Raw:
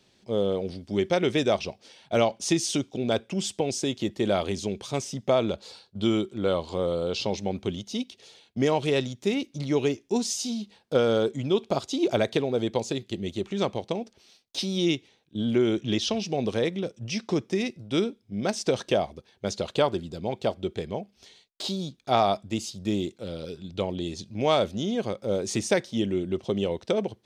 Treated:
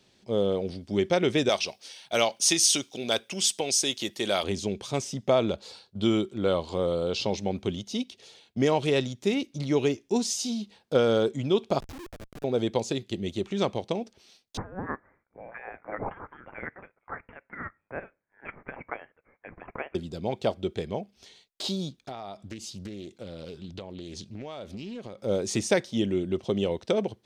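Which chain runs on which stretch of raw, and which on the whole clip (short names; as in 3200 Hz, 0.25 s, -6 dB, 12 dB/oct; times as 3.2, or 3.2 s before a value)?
1.49–4.44 tilt +3.5 dB/oct + notch 7400 Hz
11.8–12.44 high shelf 2200 Hz -7 dB + compressor, threshold -38 dBFS + Schmitt trigger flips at -36.5 dBFS
14.57–19.95 Chebyshev high-pass 1700 Hz, order 4 + inverted band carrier 3900 Hz
22.01–25.21 compressor 16:1, threshold -34 dBFS + Doppler distortion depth 0.28 ms
whole clip: dry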